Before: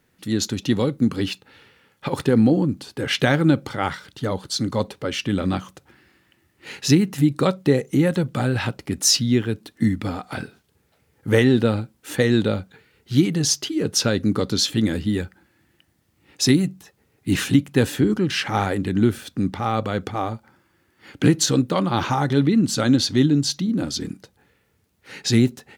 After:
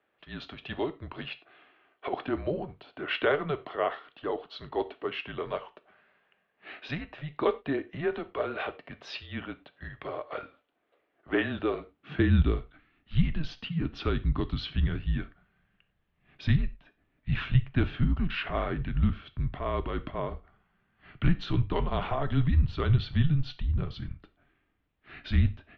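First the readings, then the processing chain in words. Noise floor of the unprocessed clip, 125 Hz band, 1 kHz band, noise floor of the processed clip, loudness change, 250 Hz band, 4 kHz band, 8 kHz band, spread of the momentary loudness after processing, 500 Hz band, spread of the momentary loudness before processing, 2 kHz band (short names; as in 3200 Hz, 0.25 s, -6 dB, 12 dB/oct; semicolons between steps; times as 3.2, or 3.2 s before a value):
-65 dBFS, -6.0 dB, -8.0 dB, -75 dBFS, -9.5 dB, -13.5 dB, -15.0 dB, under -40 dB, 15 LU, -9.0 dB, 11 LU, -7.5 dB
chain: non-linear reverb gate 0.13 s falling, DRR 11.5 dB; high-pass sweep 660 Hz -> 110 Hz, 11.68–12.8; mistuned SSB -150 Hz 150–3500 Hz; gain -8 dB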